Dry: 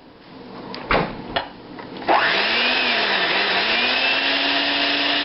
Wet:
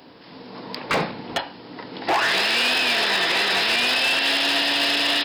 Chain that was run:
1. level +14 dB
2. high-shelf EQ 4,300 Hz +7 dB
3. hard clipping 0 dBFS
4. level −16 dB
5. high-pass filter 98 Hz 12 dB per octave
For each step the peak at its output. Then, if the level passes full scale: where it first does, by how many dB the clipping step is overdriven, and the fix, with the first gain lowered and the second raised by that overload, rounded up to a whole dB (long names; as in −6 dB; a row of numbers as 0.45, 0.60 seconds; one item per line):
+8.5, +9.0, 0.0, −16.0, −12.5 dBFS
step 1, 9.0 dB
step 1 +5 dB, step 4 −7 dB